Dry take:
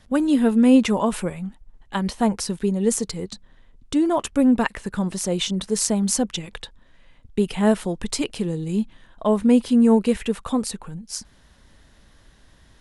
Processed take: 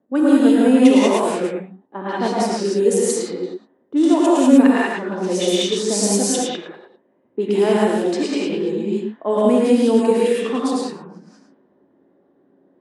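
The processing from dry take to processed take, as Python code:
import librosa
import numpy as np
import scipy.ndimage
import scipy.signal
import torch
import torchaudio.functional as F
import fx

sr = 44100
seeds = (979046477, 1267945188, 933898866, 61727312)

p1 = fx.high_shelf(x, sr, hz=6000.0, db=-6.5, at=(7.66, 8.55))
p2 = p1 + fx.echo_single(p1, sr, ms=110, db=-4.0, dry=0)
p3 = fx.rev_gated(p2, sr, seeds[0], gate_ms=220, shape='rising', drr_db=-5.5)
p4 = fx.sample_gate(p3, sr, floor_db=-33.0, at=(5.47, 6.28))
p5 = fx.ladder_highpass(p4, sr, hz=260.0, resonance_pct=45)
p6 = fx.env_lowpass(p5, sr, base_hz=490.0, full_db=-19.0)
y = p6 * librosa.db_to_amplitude(5.5)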